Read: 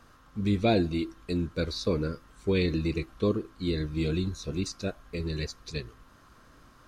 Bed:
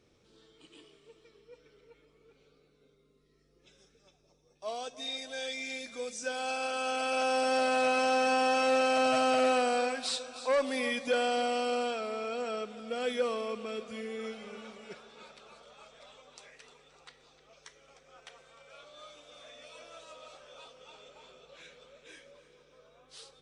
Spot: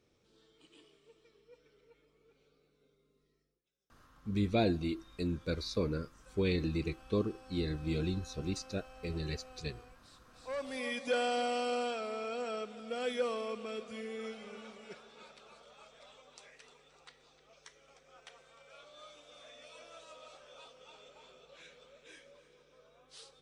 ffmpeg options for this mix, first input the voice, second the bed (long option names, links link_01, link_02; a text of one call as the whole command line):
ffmpeg -i stem1.wav -i stem2.wav -filter_complex "[0:a]adelay=3900,volume=-5.5dB[link_01];[1:a]volume=20dB,afade=type=out:start_time=3.24:duration=0.38:silence=0.0707946,afade=type=in:start_time=10.25:duration=0.87:silence=0.0530884[link_02];[link_01][link_02]amix=inputs=2:normalize=0" out.wav